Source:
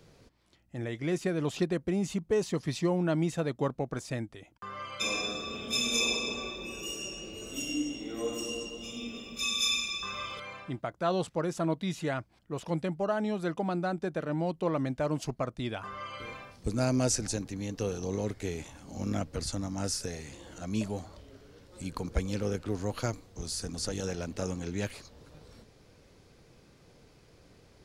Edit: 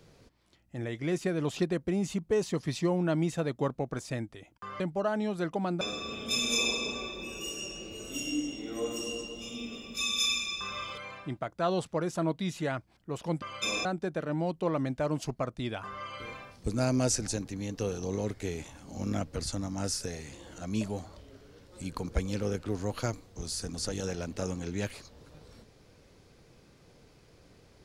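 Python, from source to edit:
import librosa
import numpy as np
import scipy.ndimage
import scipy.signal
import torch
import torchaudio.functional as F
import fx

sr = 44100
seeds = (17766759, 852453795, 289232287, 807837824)

y = fx.edit(x, sr, fx.swap(start_s=4.8, length_s=0.43, other_s=12.84, other_length_s=1.01), tone=tone)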